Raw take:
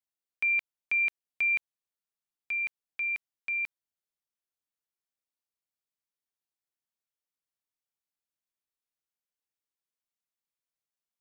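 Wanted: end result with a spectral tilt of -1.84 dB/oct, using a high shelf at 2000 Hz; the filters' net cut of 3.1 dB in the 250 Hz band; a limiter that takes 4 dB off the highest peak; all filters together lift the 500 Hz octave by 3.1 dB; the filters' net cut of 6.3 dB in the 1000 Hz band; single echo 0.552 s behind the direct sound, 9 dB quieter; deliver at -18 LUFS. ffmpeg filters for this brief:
-af "equalizer=f=250:t=o:g=-7,equalizer=f=500:t=o:g=8.5,equalizer=f=1k:t=o:g=-8.5,highshelf=f=2k:g=-7.5,alimiter=level_in=7dB:limit=-24dB:level=0:latency=1,volume=-7dB,aecho=1:1:552:0.355,volume=18dB"

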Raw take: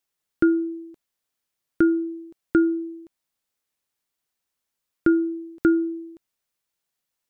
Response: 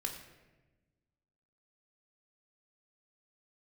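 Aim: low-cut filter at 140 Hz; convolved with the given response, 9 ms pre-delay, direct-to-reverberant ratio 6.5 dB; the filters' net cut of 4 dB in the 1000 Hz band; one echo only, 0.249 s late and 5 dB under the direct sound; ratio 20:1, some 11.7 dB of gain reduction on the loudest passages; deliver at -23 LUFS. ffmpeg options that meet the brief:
-filter_complex "[0:a]highpass=140,equalizer=f=1k:t=o:g=-8,acompressor=threshold=-26dB:ratio=20,aecho=1:1:249:0.562,asplit=2[a][b];[1:a]atrim=start_sample=2205,adelay=9[c];[b][c]afir=irnorm=-1:irlink=0,volume=-7dB[d];[a][d]amix=inputs=2:normalize=0,volume=9.5dB"

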